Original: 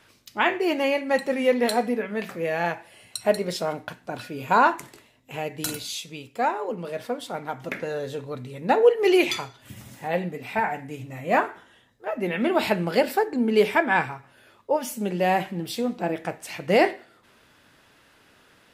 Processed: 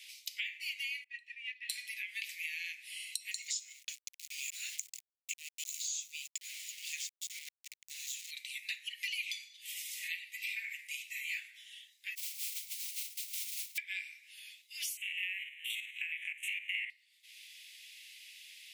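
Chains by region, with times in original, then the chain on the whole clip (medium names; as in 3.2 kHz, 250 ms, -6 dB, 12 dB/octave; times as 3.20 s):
1.04–1.70 s: vowel filter e + upward expansion, over -42 dBFS
3.31–8.31 s: slow attack 779 ms + resonant low-pass 6.9 kHz, resonance Q 12 + small samples zeroed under -44 dBFS
12.15–13.78 s: cascade formant filter u + modulation noise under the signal 11 dB
14.97–16.90 s: spectrogram pixelated in time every 50 ms + Butterworth band-stop 4.9 kHz, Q 1.3 + high-order bell 1.9 kHz +14.5 dB
whole clip: steep high-pass 2.1 kHz 72 dB/octave; compression 8:1, threshold -46 dBFS; trim +9 dB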